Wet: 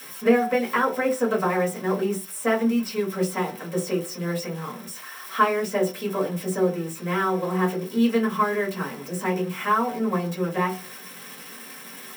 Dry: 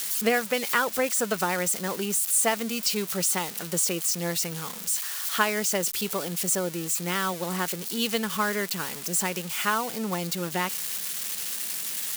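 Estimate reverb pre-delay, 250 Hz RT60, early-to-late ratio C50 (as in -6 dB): 3 ms, no reading, 11.0 dB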